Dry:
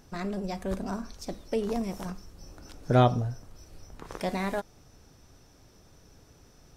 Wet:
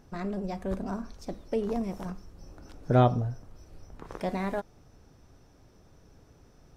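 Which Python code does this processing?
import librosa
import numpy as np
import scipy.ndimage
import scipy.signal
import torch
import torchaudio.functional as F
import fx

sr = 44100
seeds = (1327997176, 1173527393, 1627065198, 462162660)

y = fx.high_shelf(x, sr, hz=2400.0, db=-9.0)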